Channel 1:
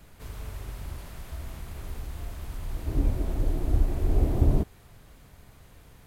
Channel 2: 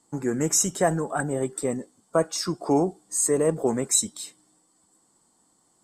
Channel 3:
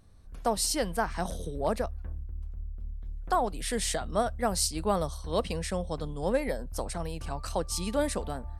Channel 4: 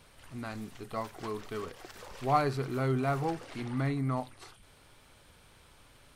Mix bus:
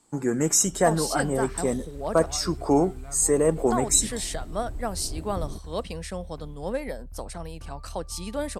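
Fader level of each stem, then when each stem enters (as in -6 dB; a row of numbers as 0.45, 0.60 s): -12.0, +1.0, -2.0, -15.5 dB; 0.95, 0.00, 0.40, 0.00 s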